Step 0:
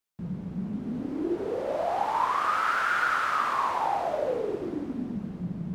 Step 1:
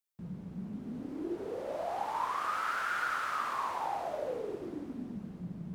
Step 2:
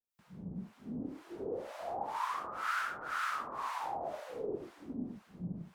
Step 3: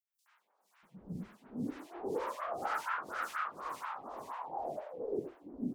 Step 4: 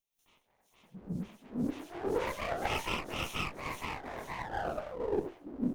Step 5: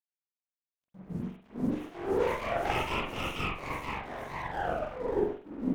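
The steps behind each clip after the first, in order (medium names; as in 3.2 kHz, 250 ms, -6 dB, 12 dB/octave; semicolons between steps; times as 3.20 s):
treble shelf 6.8 kHz +7.5 dB; trim -8 dB
harmonic tremolo 2 Hz, depth 100%, crossover 870 Hz; trim +2 dB
three bands offset in time highs, mids, lows 70/640 ms, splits 1/3.8 kHz; lamp-driven phase shifter 4.2 Hz; trim +3.5 dB
comb filter that takes the minimum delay 0.31 ms; trim +5 dB
crossover distortion -53.5 dBFS; reverberation, pre-delay 43 ms, DRR -5.5 dB; trim -2.5 dB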